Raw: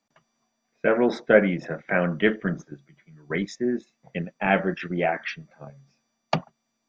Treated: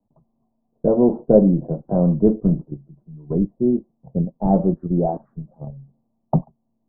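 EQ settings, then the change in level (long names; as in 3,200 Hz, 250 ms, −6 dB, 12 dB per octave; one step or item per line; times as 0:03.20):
Butterworth low-pass 1,000 Hz 48 dB per octave
spectral tilt −4.5 dB per octave
−1.0 dB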